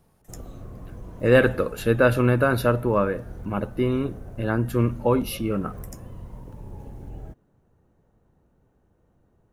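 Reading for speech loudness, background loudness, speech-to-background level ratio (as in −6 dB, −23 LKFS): −23.0 LKFS, −41.5 LKFS, 18.5 dB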